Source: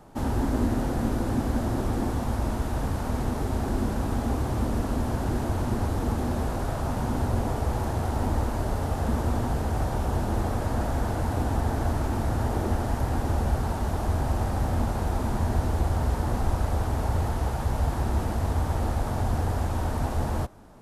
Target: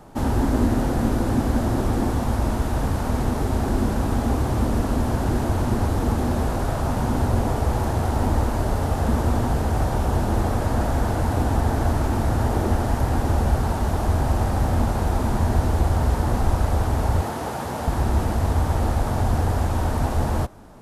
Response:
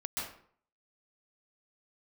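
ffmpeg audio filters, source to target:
-filter_complex "[0:a]asettb=1/sr,asplit=3[a][b][c];[a]atrim=end=17.214[d];[b]atrim=start=17.21:end=17.88,asetpts=PTS-STARTPTS,afade=t=in:d=0.004:c=qsin,afade=t=out:st=0.666:d=0.004:c=qsin,highpass=180[e];[c]atrim=start=17.876[f];[d][e]acrossfade=d=0.004:c1=hsin:c2=qsin[g];[g][f]acrossfade=d=0.004:c1=qsin:c2=hsin,volume=5dB"

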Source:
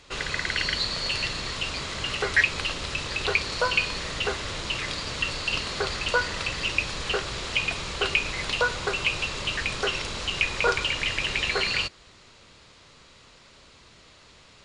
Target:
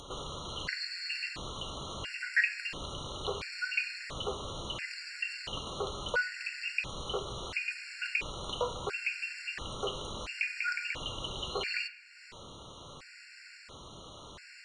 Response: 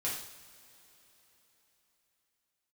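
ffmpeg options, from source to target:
-filter_complex "[0:a]acompressor=mode=upward:threshold=-28dB:ratio=2.5,asplit=2[a][b];[1:a]atrim=start_sample=2205,lowpass=2.8k,lowshelf=f=130:g=-11[c];[b][c]afir=irnorm=-1:irlink=0,volume=-8.5dB[d];[a][d]amix=inputs=2:normalize=0,afftfilt=real='re*gt(sin(2*PI*0.73*pts/sr)*(1-2*mod(floor(b*sr/1024/1400),2)),0)':imag='im*gt(sin(2*PI*0.73*pts/sr)*(1-2*mod(floor(b*sr/1024/1400),2)),0)':win_size=1024:overlap=0.75,volume=-8dB"

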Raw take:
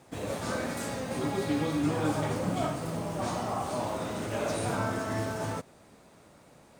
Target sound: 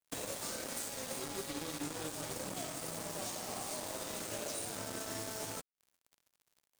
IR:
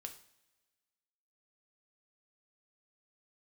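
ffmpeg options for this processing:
-filter_complex "[0:a]acrossover=split=330|560|2800[a][b][c][d];[c]asoftclip=type=hard:threshold=-39.5dB[e];[a][b][e][d]amix=inputs=4:normalize=0,bass=f=250:g=-8,treble=f=4k:g=11,acompressor=threshold=-43dB:ratio=6,bandreject=f=60:t=h:w=6,bandreject=f=120:t=h:w=6,bandreject=f=180:t=h:w=6,bandreject=f=240:t=h:w=6,bandreject=f=300:t=h:w=6,bandreject=f=360:t=h:w=6,bandreject=f=420:t=h:w=6,bandreject=f=480:t=h:w=6,acrusher=bits=6:mix=0:aa=0.5,volume=4dB"

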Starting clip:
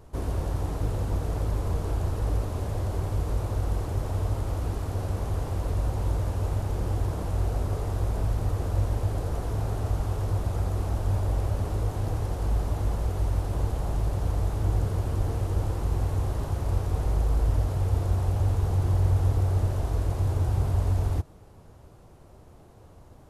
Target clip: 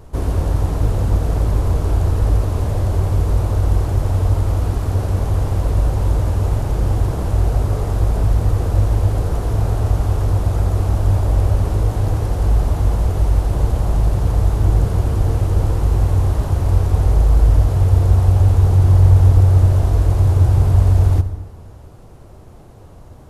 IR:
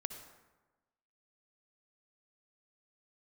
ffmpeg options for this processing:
-filter_complex "[0:a]asplit=2[a][b];[1:a]atrim=start_sample=2205,lowshelf=f=160:g=5.5[c];[b][c]afir=irnorm=-1:irlink=0,volume=3.5dB[d];[a][d]amix=inputs=2:normalize=0,volume=1dB"

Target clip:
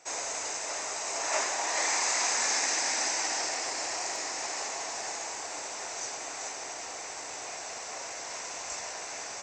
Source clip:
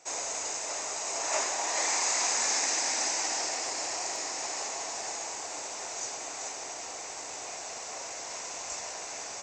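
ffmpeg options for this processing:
-af "equalizer=f=1.7k:w=1.5:g=3.5,bandreject=f=6.8k:w=23"

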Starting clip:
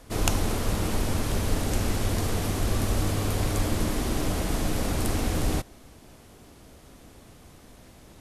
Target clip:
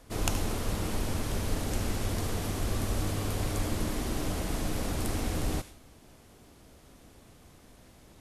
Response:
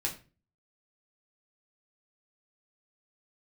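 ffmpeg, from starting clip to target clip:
-filter_complex "[0:a]asplit=2[a][b];[b]tiltshelf=f=970:g=-9.5[c];[1:a]atrim=start_sample=2205,asetrate=26901,aresample=44100,adelay=73[d];[c][d]afir=irnorm=-1:irlink=0,volume=-25dB[e];[a][e]amix=inputs=2:normalize=0,volume=-5dB"

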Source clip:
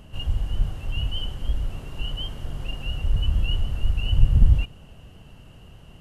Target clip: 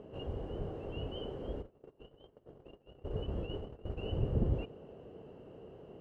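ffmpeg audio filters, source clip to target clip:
-filter_complex "[0:a]bandpass=f=430:t=q:w=3.1:csg=0,asplit=3[a][b][c];[a]afade=t=out:st=1.61:d=0.02[d];[b]agate=range=-28dB:threshold=-47dB:ratio=16:detection=peak,afade=t=in:st=1.61:d=0.02,afade=t=out:st=3.96:d=0.02[e];[c]afade=t=in:st=3.96:d=0.02[f];[d][e][f]amix=inputs=3:normalize=0,volume=10dB"

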